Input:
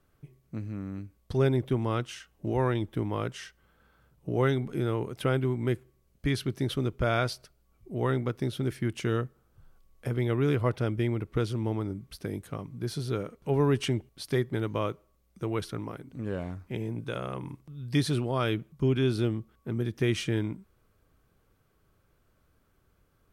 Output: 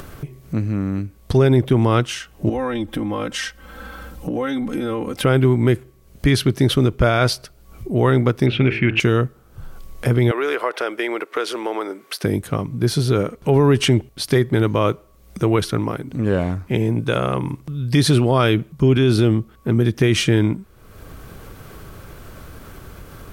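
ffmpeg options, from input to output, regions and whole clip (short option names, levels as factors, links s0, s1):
-filter_complex "[0:a]asettb=1/sr,asplit=3[s0][s1][s2];[s0]atrim=end=2.494[s3];[s1]atrim=start=2.49:end=5.24,asetpts=PTS-STARTPTS,afade=t=in:d=0.004:c=qsin,afade=t=out:st=2.746:d=0.004:c=qsin,aecho=1:1:3.8:0.89,atrim=end_sample=121275,acompressor=threshold=0.0178:ratio=5:attack=3.2:release=140:knee=1:detection=peak[s4];[s2]atrim=start=5.236[s5];[s3][s4]acrossfade=d=0.004:c1=hsin:c2=qsin[s6];[s6][s5]acrossfade=d=0.004:c1=qsin:c2=hsin,asettb=1/sr,asplit=3[s7][s8][s9];[s7]atrim=end=8.464[s10];[s8]atrim=start=8.46:end=9,asetpts=PTS-STARTPTS,afade=t=in:d=0.004:c=qsin,afade=t=out:st=0.536:d=0.004:c=qsin,lowpass=f=2500:t=q:w=7.3,bandreject=f=55.68:t=h:w=4,bandreject=f=111.36:t=h:w=4,bandreject=f=167.04:t=h:w=4,bandreject=f=222.72:t=h:w=4,bandreject=f=278.4:t=h:w=4,bandreject=f=334.08:t=h:w=4,bandreject=f=389.76:t=h:w=4,bandreject=f=445.44:t=h:w=4,bandreject=f=501.12:t=h:w=4,bandreject=f=556.8:t=h:w=4,bandreject=f=612.48:t=h:w=4,bandreject=f=668.16:t=h:w=4,bandreject=f=723.84:t=h:w=4,bandreject=f=779.52:t=h:w=4,bandreject=f=835.2:t=h:w=4,bandreject=f=890.88:t=h:w=4,bandreject=f=946.56:t=h:w=4,bandreject=f=1002.24:t=h:w=4,bandreject=f=1057.92:t=h:w=4,bandreject=f=1113.6:t=h:w=4,bandreject=f=1169.28:t=h:w=4,bandreject=f=1224.96:t=h:w=4,bandreject=f=1280.64:t=h:w=4,bandreject=f=1336.32:t=h:w=4,bandreject=f=1392:t=h:w=4,bandreject=f=1447.68:t=h:w=4,bandreject=f=1503.36:t=h:w=4,bandreject=f=1559.04:t=h:w=4,bandreject=f=1614.72:t=h:w=4,bandreject=f=1670.4:t=h:w=4,bandreject=f=1726.08:t=h:w=4,bandreject=f=1781.76:t=h:w=4,bandreject=f=1837.44:t=h:w=4[s11];[s9]atrim=start=8.996[s12];[s10][s11]acrossfade=d=0.004:c1=hsin:c2=qsin[s13];[s13][s12]acrossfade=d=0.004:c1=qsin:c2=hsin,asettb=1/sr,asplit=3[s14][s15][s16];[s14]atrim=end=10.314[s17];[s15]atrim=start=10.31:end=12.24,asetpts=PTS-STARTPTS,afade=t=in:d=0.004:c=qsin,afade=t=out:st=1.926:d=0.004:c=qsin,highpass=f=400:w=0.5412,highpass=f=400:w=1.3066,equalizer=f=1600:w=0.93:g=5.5,acompressor=threshold=0.0224:ratio=3:attack=3.2:release=140:knee=1:detection=peak[s18];[s16]atrim=start=12.236[s19];[s17][s18]acrossfade=d=0.004:c1=hsin:c2=qsin[s20];[s20][s19]acrossfade=d=0.004:c1=qsin:c2=hsin,acompressor=mode=upward:threshold=0.0126:ratio=2.5,alimiter=level_in=10:limit=0.891:release=50:level=0:latency=1,volume=0.531"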